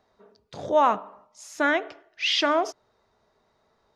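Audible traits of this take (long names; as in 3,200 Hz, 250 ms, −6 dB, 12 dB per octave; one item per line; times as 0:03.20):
background noise floor −69 dBFS
spectral slope −2.5 dB per octave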